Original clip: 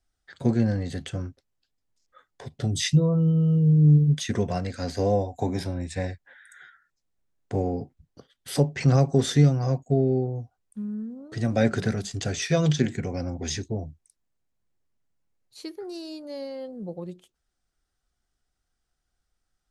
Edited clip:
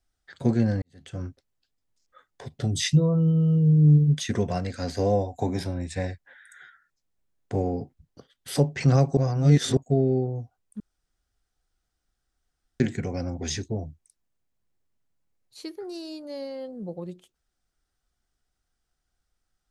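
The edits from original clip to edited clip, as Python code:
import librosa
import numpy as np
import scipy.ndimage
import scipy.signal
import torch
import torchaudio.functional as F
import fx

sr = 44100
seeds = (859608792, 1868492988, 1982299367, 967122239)

y = fx.edit(x, sr, fx.fade_in_span(start_s=0.82, length_s=0.42, curve='qua'),
    fx.reverse_span(start_s=9.17, length_s=0.6),
    fx.room_tone_fill(start_s=10.8, length_s=2.0), tone=tone)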